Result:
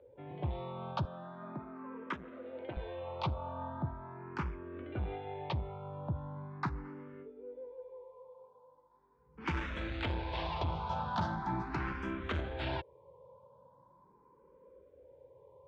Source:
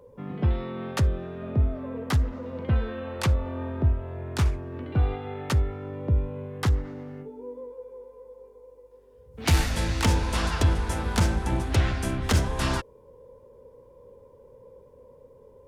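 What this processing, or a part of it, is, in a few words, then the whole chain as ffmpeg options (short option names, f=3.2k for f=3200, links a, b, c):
barber-pole phaser into a guitar amplifier: -filter_complex "[0:a]asplit=2[a][b];[b]afreqshift=0.4[c];[a][c]amix=inputs=2:normalize=1,asoftclip=type=tanh:threshold=-21.5dB,highpass=100,equalizer=f=100:t=q:w=4:g=-6,equalizer=f=240:t=q:w=4:g=-10,equalizer=f=460:t=q:w=4:g=-8,equalizer=f=930:t=q:w=4:g=5,equalizer=f=1.9k:t=q:w=4:g=-6,equalizer=f=2.8k:t=q:w=4:g=-5,lowpass=f=3.5k:w=0.5412,lowpass=f=3.5k:w=1.3066,asettb=1/sr,asplit=3[d][e][f];[d]atrim=end=1.054[g];[e]atrim=start=1.05:end=2.77,asetpts=PTS-STARTPTS,afade=t=in:d=0.004:c=qsin,afade=t=out:st=1.716:d=0.004:c=qsin,highpass=230[h];[f]atrim=start=2.766[i];[g][h]acrossfade=d=0.004:c1=hsin:c2=qsin[j];[j][i]acrossfade=d=0.004:c1=qsin:c2=hsin,volume=-1.5dB"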